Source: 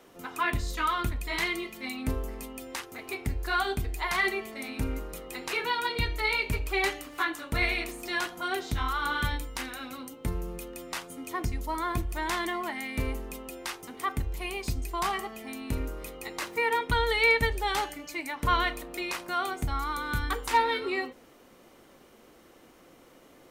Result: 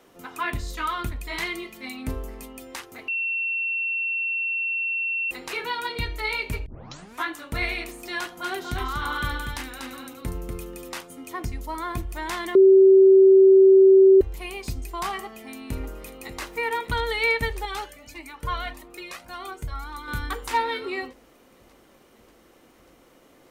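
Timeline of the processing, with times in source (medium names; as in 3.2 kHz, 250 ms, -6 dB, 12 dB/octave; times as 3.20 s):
3.08–5.31 s: bleep 2.71 kHz -23.5 dBFS
6.66 s: tape start 0.59 s
8.19–11.01 s: delay 241 ms -4.5 dB
12.55–14.21 s: bleep 384 Hz -9.5 dBFS
15.24–16.41 s: echo throw 590 ms, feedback 80%, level -13 dB
17.65–20.08 s: Shepard-style flanger rising 1.7 Hz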